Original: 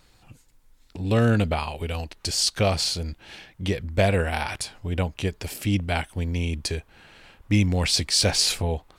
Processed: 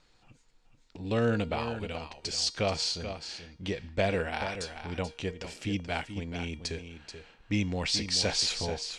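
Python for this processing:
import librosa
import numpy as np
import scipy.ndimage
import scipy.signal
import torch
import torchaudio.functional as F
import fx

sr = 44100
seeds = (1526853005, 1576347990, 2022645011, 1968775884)

y = scipy.signal.sosfilt(scipy.signal.butter(4, 7300.0, 'lowpass', fs=sr, output='sos'), x)
y = fx.peak_eq(y, sr, hz=75.0, db=-7.0, octaves=1.6)
y = fx.comb_fb(y, sr, f0_hz=470.0, decay_s=0.5, harmonics='all', damping=0.0, mix_pct=60)
y = y + 10.0 ** (-9.5 / 20.0) * np.pad(y, (int(433 * sr / 1000.0), 0))[:len(y)]
y = F.gain(torch.from_numpy(y), 1.5).numpy()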